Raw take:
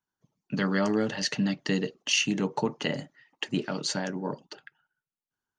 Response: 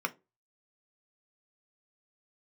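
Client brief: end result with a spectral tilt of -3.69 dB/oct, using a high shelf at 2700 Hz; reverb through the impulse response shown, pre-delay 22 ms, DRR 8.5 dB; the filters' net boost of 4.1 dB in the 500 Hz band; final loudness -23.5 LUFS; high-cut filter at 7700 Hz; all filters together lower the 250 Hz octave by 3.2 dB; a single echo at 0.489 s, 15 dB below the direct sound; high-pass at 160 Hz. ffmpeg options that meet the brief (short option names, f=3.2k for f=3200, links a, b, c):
-filter_complex "[0:a]highpass=160,lowpass=7.7k,equalizer=f=250:t=o:g=-4.5,equalizer=f=500:t=o:g=6.5,highshelf=f=2.7k:g=-7,aecho=1:1:489:0.178,asplit=2[a][b];[1:a]atrim=start_sample=2205,adelay=22[c];[b][c]afir=irnorm=-1:irlink=0,volume=-15dB[d];[a][d]amix=inputs=2:normalize=0,volume=6dB"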